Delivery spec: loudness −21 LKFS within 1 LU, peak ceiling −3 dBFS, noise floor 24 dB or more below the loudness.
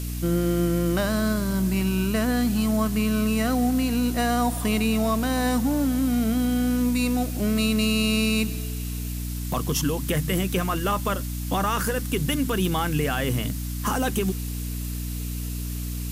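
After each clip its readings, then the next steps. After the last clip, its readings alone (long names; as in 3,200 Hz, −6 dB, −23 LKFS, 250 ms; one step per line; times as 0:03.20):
mains hum 60 Hz; hum harmonics up to 300 Hz; level of the hum −28 dBFS; background noise floor −30 dBFS; target noise floor −49 dBFS; integrated loudness −24.5 LKFS; sample peak −11.5 dBFS; target loudness −21.0 LKFS
→ mains-hum notches 60/120/180/240/300 Hz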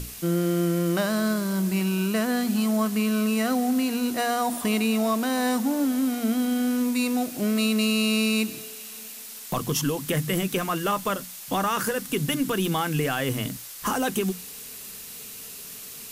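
mains hum none found; background noise floor −40 dBFS; target noise floor −49 dBFS
→ broadband denoise 9 dB, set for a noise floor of −40 dBFS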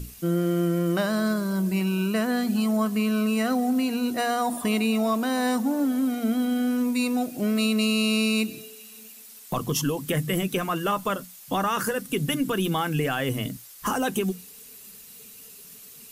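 background noise floor −46 dBFS; target noise floor −50 dBFS
→ broadband denoise 6 dB, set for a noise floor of −46 dBFS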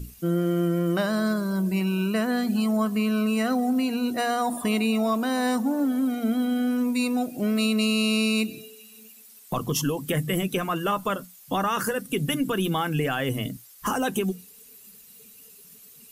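background noise floor −50 dBFS; integrated loudness −25.5 LKFS; sample peak −13.0 dBFS; target loudness −21.0 LKFS
→ level +4.5 dB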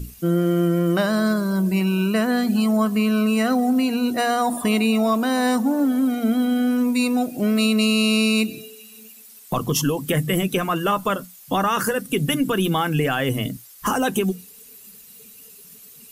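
integrated loudness −21.0 LKFS; sample peak −8.5 dBFS; background noise floor −46 dBFS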